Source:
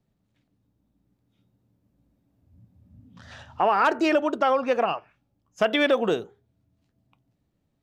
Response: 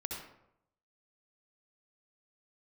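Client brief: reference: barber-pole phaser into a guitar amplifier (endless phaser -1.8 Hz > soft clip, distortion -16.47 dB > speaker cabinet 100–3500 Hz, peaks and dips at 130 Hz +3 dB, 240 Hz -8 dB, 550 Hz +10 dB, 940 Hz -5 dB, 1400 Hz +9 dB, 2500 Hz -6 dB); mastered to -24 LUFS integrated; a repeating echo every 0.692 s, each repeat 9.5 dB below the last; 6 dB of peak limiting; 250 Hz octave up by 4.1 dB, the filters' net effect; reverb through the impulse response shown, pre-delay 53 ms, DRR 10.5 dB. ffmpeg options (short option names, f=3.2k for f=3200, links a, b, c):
-filter_complex "[0:a]equalizer=f=250:t=o:g=8,alimiter=limit=-13dB:level=0:latency=1,aecho=1:1:692|1384|2076|2768:0.335|0.111|0.0365|0.012,asplit=2[a][b];[1:a]atrim=start_sample=2205,adelay=53[c];[b][c]afir=irnorm=-1:irlink=0,volume=-11dB[d];[a][d]amix=inputs=2:normalize=0,asplit=2[e][f];[f]afreqshift=-1.8[g];[e][g]amix=inputs=2:normalize=1,asoftclip=threshold=-18.5dB,highpass=100,equalizer=f=130:t=q:w=4:g=3,equalizer=f=240:t=q:w=4:g=-8,equalizer=f=550:t=q:w=4:g=10,equalizer=f=940:t=q:w=4:g=-5,equalizer=f=1.4k:t=q:w=4:g=9,equalizer=f=2.5k:t=q:w=4:g=-6,lowpass=f=3.5k:w=0.5412,lowpass=f=3.5k:w=1.3066,volume=1dB"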